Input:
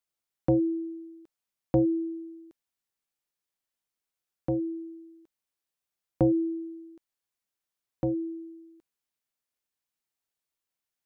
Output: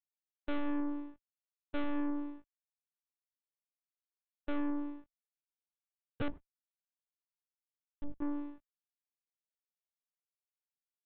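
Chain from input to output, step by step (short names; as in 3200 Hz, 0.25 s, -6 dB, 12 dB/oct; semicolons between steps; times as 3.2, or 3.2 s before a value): spectral gain 6.28–8.21, 210–1300 Hz -25 dB; de-hum 119.9 Hz, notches 5; backlash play -39.5 dBFS; tube stage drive 38 dB, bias 0.45; monotone LPC vocoder at 8 kHz 290 Hz; gain +7 dB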